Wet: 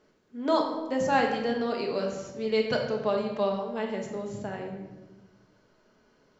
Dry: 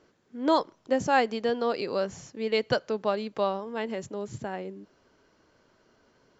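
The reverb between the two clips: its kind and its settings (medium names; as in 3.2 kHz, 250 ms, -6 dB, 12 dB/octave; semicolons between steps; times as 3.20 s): simulated room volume 720 m³, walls mixed, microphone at 1.4 m; trim -3.5 dB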